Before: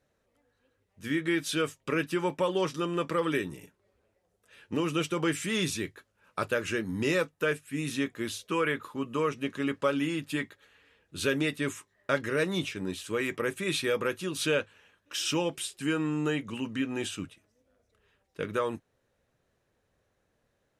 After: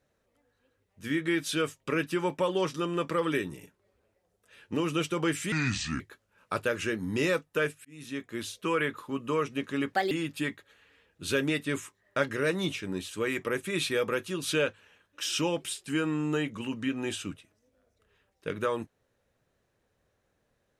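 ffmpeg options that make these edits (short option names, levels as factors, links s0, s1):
-filter_complex "[0:a]asplit=6[s0][s1][s2][s3][s4][s5];[s0]atrim=end=5.524[s6];[s1]atrim=start=5.52:end=5.86,asetpts=PTS-STARTPTS,asetrate=31311,aresample=44100,atrim=end_sample=21118,asetpts=PTS-STARTPTS[s7];[s2]atrim=start=5.856:end=7.71,asetpts=PTS-STARTPTS,afade=t=out:st=1.85:d=0.004:c=hsin[s8];[s3]atrim=start=7.71:end=9.794,asetpts=PTS-STARTPTS,afade=t=in:d=0.93:c=qsin[s9];[s4]atrim=start=9.79:end=10.04,asetpts=PTS-STARTPTS,asetrate=60417,aresample=44100,atrim=end_sample=8047,asetpts=PTS-STARTPTS[s10];[s5]atrim=start=10.036[s11];[s6][s7]acrossfade=d=0.004:c1=hsin:c2=hsin[s12];[s8][s9]concat=n=2:v=0:a=1[s13];[s12][s13]acrossfade=d=0.004:c1=hsin:c2=hsin[s14];[s14][s10]acrossfade=d=0.004:c1=hsin:c2=hsin[s15];[s15][s11]acrossfade=d=0.004:c1=hsin:c2=hsin"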